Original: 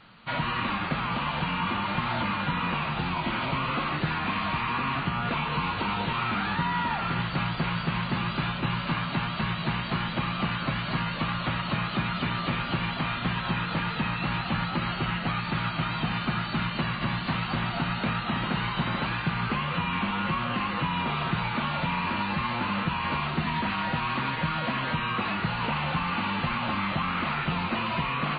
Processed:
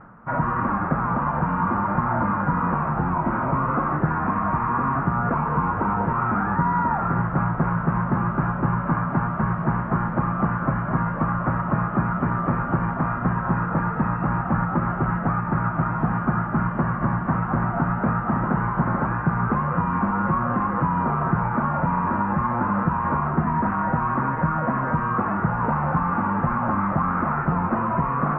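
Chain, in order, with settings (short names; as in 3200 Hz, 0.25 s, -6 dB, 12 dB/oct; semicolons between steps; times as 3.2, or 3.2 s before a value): steep low-pass 1500 Hz 36 dB/oct; reverse; upward compressor, threshold -39 dBFS; reverse; gain +7 dB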